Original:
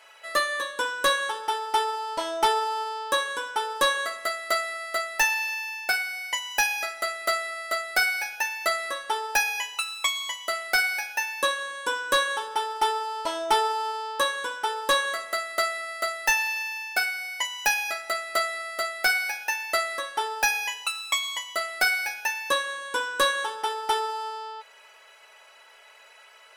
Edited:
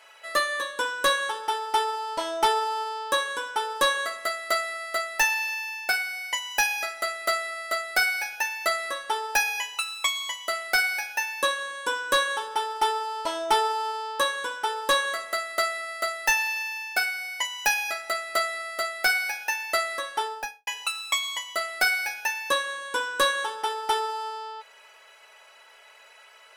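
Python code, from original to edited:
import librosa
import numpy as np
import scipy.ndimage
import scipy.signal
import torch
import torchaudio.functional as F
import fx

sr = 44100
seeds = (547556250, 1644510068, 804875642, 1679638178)

y = fx.studio_fade_out(x, sr, start_s=20.19, length_s=0.48)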